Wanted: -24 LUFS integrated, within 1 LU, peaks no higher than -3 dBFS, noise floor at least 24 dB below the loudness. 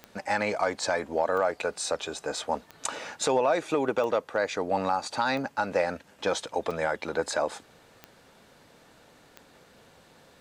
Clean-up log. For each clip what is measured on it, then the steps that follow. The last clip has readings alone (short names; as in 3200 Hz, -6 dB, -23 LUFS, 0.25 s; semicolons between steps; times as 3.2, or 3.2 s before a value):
clicks 8; loudness -29.0 LUFS; peak -13.5 dBFS; loudness target -24.0 LUFS
-> de-click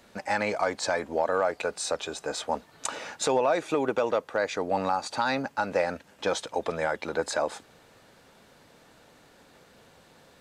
clicks 0; loudness -29.0 LUFS; peak -13.5 dBFS; loudness target -24.0 LUFS
-> gain +5 dB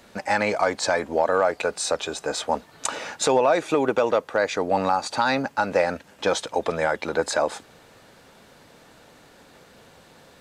loudness -24.0 LUFS; peak -8.5 dBFS; noise floor -52 dBFS